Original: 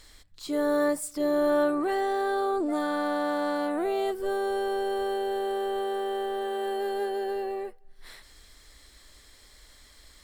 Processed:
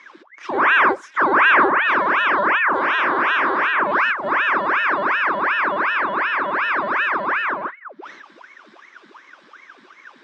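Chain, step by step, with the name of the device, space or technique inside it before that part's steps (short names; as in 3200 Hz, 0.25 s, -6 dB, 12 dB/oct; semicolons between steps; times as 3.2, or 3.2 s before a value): voice changer toy (ring modulator with a swept carrier 1200 Hz, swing 85%, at 2.7 Hz; speaker cabinet 470–4500 Hz, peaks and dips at 470 Hz -9 dB, 730 Hz -8 dB, 1100 Hz +8 dB, 1600 Hz +7 dB, 2900 Hz -3 dB, 4400 Hz -9 dB); bell 350 Hz +12 dB 1.9 oct; gain +8 dB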